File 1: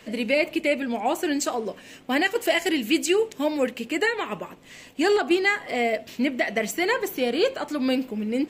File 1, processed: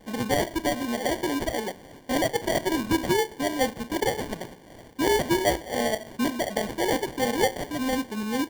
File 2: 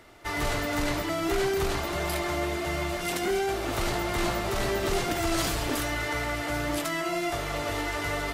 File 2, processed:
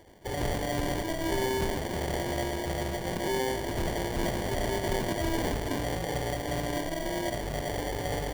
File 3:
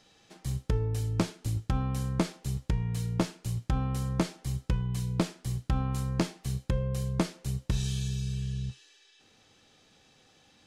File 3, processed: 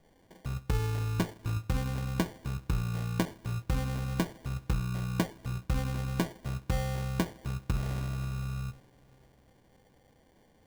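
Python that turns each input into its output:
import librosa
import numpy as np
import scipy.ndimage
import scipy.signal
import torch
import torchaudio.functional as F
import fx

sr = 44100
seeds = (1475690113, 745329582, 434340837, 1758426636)

y = fx.rev_double_slope(x, sr, seeds[0], early_s=0.39, late_s=4.9, knee_db=-22, drr_db=12.5)
y = fx.sample_hold(y, sr, seeds[1], rate_hz=1300.0, jitter_pct=0)
y = y * 10.0 ** (-2.0 / 20.0)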